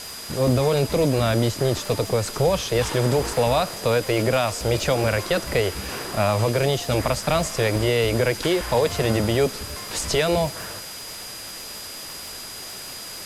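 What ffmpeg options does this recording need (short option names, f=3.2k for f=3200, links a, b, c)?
-af "adeclick=t=4,bandreject=f=4.9k:w=30,afwtdn=0.016"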